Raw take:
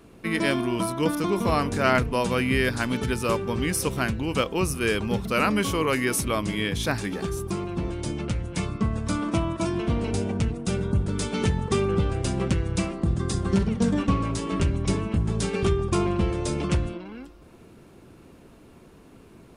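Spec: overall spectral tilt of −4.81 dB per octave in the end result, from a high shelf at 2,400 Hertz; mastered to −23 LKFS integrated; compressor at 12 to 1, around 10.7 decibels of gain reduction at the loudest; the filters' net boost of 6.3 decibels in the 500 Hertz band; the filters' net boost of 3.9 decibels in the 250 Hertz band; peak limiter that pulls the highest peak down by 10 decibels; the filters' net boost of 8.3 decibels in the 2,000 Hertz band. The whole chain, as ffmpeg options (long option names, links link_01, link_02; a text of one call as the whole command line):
ffmpeg -i in.wav -af "equalizer=frequency=250:width_type=o:gain=3,equalizer=frequency=500:width_type=o:gain=6.5,equalizer=frequency=2000:width_type=o:gain=6,highshelf=frequency=2400:gain=8,acompressor=threshold=-23dB:ratio=12,volume=8dB,alimiter=limit=-13.5dB:level=0:latency=1" out.wav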